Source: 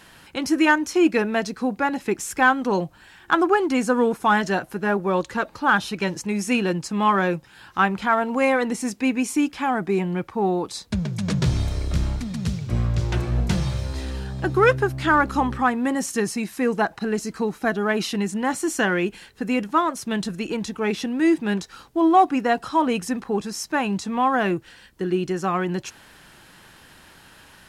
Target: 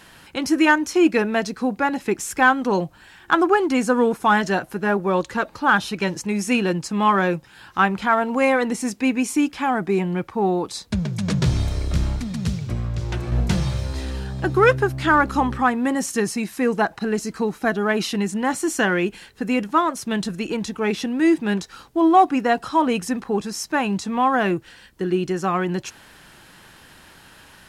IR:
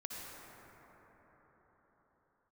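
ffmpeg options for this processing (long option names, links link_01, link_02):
-filter_complex "[0:a]asettb=1/sr,asplit=3[link_01][link_02][link_03];[link_01]atrim=end=12.644[link_04];[link_02]atrim=start=12.64:end=13.32,asetpts=PTS-STARTPTS,afade=type=in:duration=0.004:curve=qsin,afade=type=out:start_time=0.676:duration=0.004:curve=qsin,acompressor=threshold=-23dB:ratio=6[link_05];[link_03]atrim=start=13.316[link_06];[link_04][link_05]acrossfade=duration=0.004:curve1=hsin:curve2=qsin[link_07];[link_07][link_06]acrossfade=duration=0.004:curve1=qsin:curve2=hsin,volume=1.5dB"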